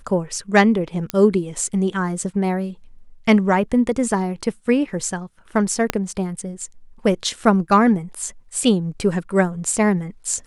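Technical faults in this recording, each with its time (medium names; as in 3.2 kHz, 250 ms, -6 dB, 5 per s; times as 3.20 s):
1.10 s: pop -7 dBFS
5.90 s: pop -3 dBFS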